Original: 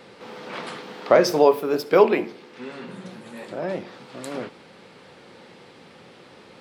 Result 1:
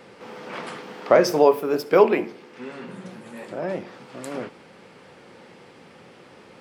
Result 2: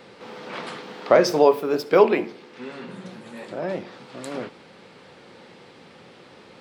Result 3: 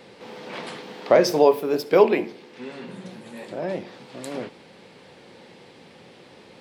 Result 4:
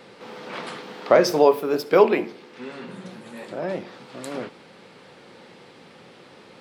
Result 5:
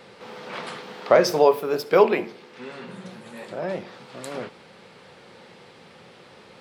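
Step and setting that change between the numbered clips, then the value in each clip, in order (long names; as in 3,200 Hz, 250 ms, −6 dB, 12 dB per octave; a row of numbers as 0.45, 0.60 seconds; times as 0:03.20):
parametric band, centre frequency: 3,900, 12,000, 1,300, 78, 290 Hertz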